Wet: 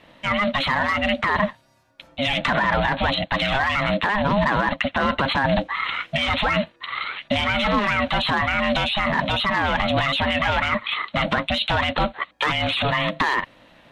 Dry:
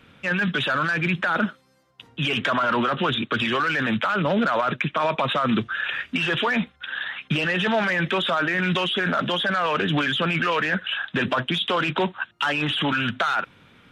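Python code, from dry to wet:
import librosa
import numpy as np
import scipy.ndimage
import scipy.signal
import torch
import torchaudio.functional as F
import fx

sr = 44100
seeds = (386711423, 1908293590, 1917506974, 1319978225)

y = x * np.sin(2.0 * np.pi * 410.0 * np.arange(len(x)) / sr)
y = y * librosa.db_to_amplitude(4.5)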